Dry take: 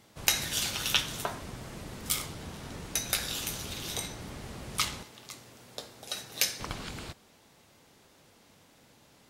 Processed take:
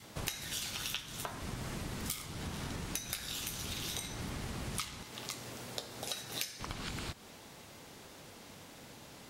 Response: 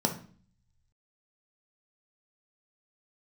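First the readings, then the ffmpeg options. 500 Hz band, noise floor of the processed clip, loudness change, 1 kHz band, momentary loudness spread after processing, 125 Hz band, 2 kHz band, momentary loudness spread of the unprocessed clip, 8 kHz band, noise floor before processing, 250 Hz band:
−3.5 dB, −54 dBFS, −7.0 dB, −5.0 dB, 14 LU, −0.5 dB, −7.0 dB, 17 LU, −7.5 dB, −61 dBFS, −1.0 dB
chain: -af "adynamicequalizer=threshold=0.00224:dfrequency=530:dqfactor=1.3:tfrequency=530:tqfactor=1.3:attack=5:release=100:ratio=0.375:range=2:mode=cutabove:tftype=bell,acompressor=threshold=-44dB:ratio=8,volume=7.5dB"

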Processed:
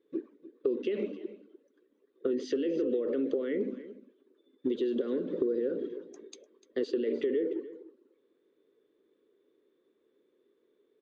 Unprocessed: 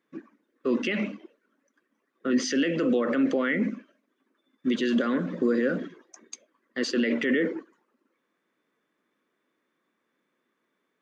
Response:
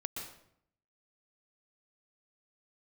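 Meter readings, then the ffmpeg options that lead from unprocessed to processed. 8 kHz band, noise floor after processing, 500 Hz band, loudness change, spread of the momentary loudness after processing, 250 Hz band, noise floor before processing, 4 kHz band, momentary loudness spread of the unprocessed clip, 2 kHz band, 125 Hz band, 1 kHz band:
can't be measured, −73 dBFS, −1.0 dB, −6.0 dB, 15 LU, −8.0 dB, −78 dBFS, −13.5 dB, 20 LU, −19.0 dB, −13.5 dB, below −15 dB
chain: -af "firequalizer=gain_entry='entry(100,0);entry(170,-11);entry(410,12);entry(670,-9);entry(1200,-13);entry(2200,-13);entry(3700,-3);entry(5300,-15)':delay=0.05:min_phase=1,acompressor=threshold=-32dB:ratio=5,aecho=1:1:298:0.158,volume=3.5dB"

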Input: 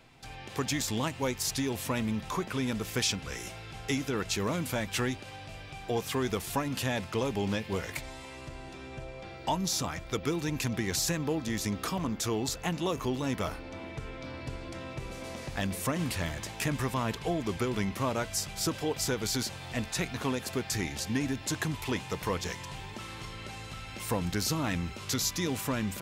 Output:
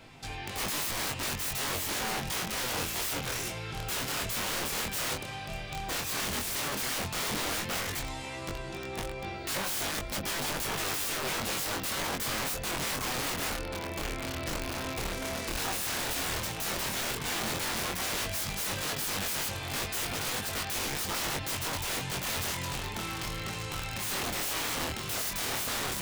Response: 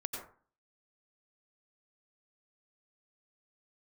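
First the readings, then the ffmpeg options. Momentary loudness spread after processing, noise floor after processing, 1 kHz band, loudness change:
5 LU, −39 dBFS, +1.0 dB, +1.0 dB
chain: -af "aeval=exprs='(mod(47.3*val(0)+1,2)-1)/47.3':channel_layout=same,flanger=delay=20:depth=6:speed=0.1,volume=9dB"

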